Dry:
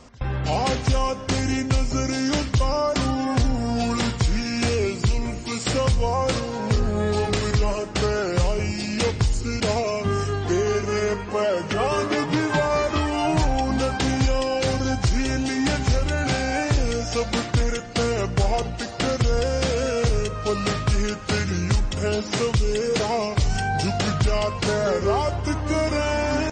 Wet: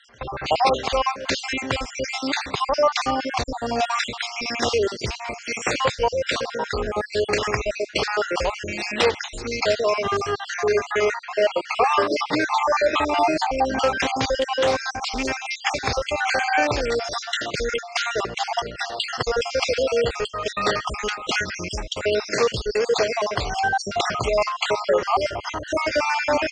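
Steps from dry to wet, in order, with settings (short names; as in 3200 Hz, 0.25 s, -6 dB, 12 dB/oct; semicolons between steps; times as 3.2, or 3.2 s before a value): random spectral dropouts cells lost 48%; three-band isolator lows -18 dB, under 380 Hz, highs -14 dB, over 5600 Hz; 14.37–15.26 Doppler distortion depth 0.16 ms; gain +7.5 dB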